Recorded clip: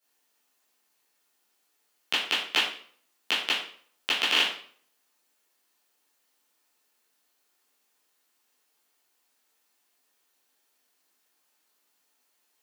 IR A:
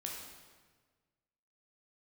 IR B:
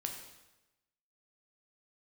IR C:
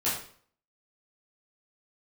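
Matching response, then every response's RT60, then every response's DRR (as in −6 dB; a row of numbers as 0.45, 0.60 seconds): C; 1.5, 1.0, 0.50 seconds; −2.0, 2.5, −10.5 decibels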